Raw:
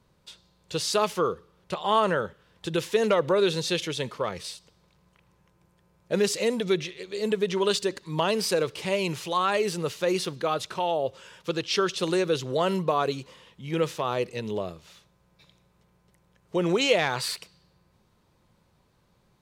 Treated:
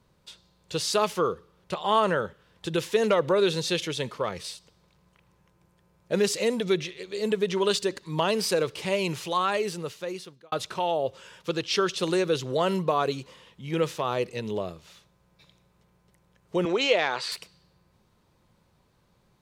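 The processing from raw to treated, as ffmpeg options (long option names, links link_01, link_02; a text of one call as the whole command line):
ffmpeg -i in.wav -filter_complex "[0:a]asettb=1/sr,asplit=3[link_01][link_02][link_03];[link_01]atrim=end=16.654[link_04];[link_02]atrim=start=16.65:end=17.32,asetpts=PTS-STARTPTS,afade=type=in:duration=0.004:curve=qsin,afade=type=out:start_time=0.666:duration=0.004:curve=qsin,highpass=300,lowpass=5300[link_05];[link_03]atrim=start=17.316[link_06];[link_04][link_05]acrossfade=duration=0.004:curve1=hsin:curve2=qsin[link_07];[link_07][link_06]acrossfade=duration=0.004:curve1=qsin:curve2=hsin,asplit=2[link_08][link_09];[link_08]atrim=end=10.52,asetpts=PTS-STARTPTS,afade=type=out:start_time=9.34:duration=1.18[link_10];[link_09]atrim=start=10.52,asetpts=PTS-STARTPTS,afade=type=in:duration=0.004:curve=hsin[link_11];[link_10][link_11]concat=n=2:v=0:a=1" out.wav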